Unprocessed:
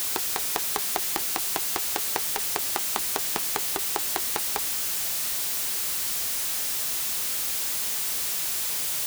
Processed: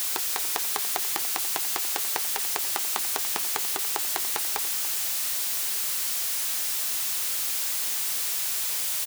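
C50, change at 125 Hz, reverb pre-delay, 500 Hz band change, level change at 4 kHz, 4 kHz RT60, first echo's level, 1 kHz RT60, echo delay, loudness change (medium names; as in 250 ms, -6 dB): no reverb, no reading, no reverb, -3.5 dB, 0.0 dB, no reverb, -14.0 dB, no reverb, 288 ms, 0.0 dB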